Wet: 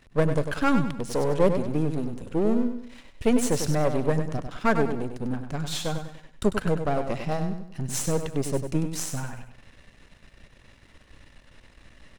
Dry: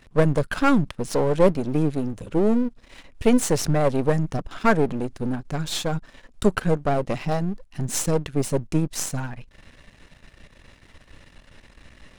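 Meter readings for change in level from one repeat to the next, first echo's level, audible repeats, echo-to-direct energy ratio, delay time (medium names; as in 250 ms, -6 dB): -8.5 dB, -8.0 dB, 4, -7.5 dB, 98 ms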